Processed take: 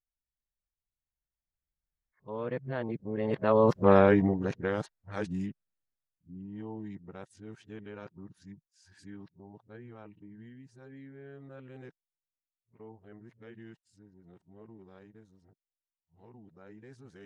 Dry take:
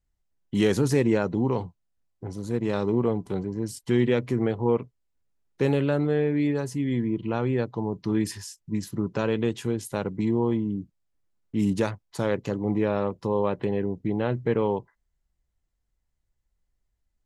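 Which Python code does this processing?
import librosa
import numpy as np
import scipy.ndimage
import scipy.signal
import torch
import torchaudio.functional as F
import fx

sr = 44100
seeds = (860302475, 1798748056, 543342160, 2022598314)

y = np.flip(x).copy()
y = fx.doppler_pass(y, sr, speed_mps=26, closest_m=4.8, pass_at_s=3.86)
y = fx.graphic_eq_15(y, sr, hz=(160, 630, 1600, 10000), db=(4, 4, 8, -6))
y = F.gain(torch.from_numpy(y), 5.0).numpy()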